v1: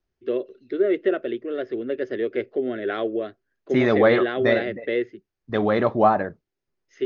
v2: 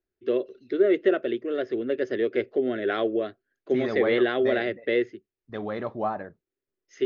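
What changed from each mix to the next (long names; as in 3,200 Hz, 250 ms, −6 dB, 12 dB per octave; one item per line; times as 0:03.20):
first voice: remove high-frequency loss of the air 90 metres
second voice −11.0 dB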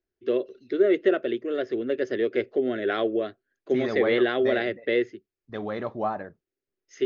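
master: remove high-frequency loss of the air 57 metres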